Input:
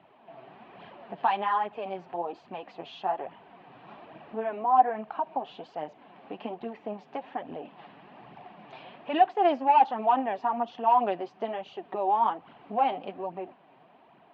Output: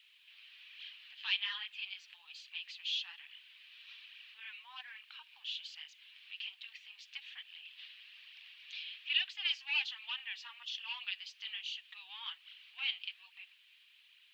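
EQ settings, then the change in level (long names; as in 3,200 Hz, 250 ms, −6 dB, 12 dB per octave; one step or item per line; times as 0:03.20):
inverse Chebyshev high-pass filter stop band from 660 Hz, stop band 70 dB
+13.0 dB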